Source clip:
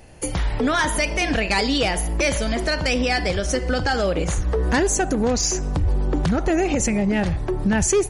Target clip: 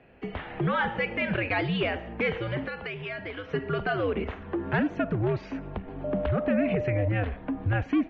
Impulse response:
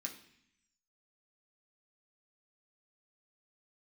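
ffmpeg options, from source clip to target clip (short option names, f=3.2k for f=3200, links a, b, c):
-filter_complex "[0:a]highpass=f=160:t=q:w=0.5412,highpass=f=160:t=q:w=1.307,lowpass=f=3.1k:t=q:w=0.5176,lowpass=f=3.1k:t=q:w=0.7071,lowpass=f=3.1k:t=q:w=1.932,afreqshift=-100,asettb=1/sr,asplit=3[a][b][c];[a]atrim=end=2.664[d];[b]atrim=start=2.66:end=3.54,asetpts=PTS-STARTPTS,afade=t=in:d=0.004:c=qsin,afade=t=out:st=0.876:d=0.004:c=qsin,acrossover=split=90|690[e][f][g];[e]acompressor=threshold=-47dB:ratio=4[h];[f]acompressor=threshold=-35dB:ratio=4[i];[g]acompressor=threshold=-30dB:ratio=4[j];[h][i][j]amix=inputs=3:normalize=0[k];[c]atrim=start=3.536[l];[d][k]acrossfade=d=0.004:c1=hsin:c2=qsin[m];[m][l]acrossfade=d=0.004:c1=qsin:c2=hsin,asettb=1/sr,asplit=3[n][o][p];[n]atrim=end=6.044[q];[o]atrim=start=6.04:end=7.08,asetpts=PTS-STARTPTS,afade=t=in:d=0.004:c=qsin,afade=t=out:st=1.036:d=0.004:c=qsin,aeval=exprs='val(0)+0.0708*sin(2*PI*600*n/s)':c=same[r];[p]atrim=start=7.076[s];[q][r]acrossfade=d=0.004:c1=hsin:c2=qsin[t];[t][s]acrossfade=d=0.004:c1=qsin:c2=hsin,volume=-5.5dB"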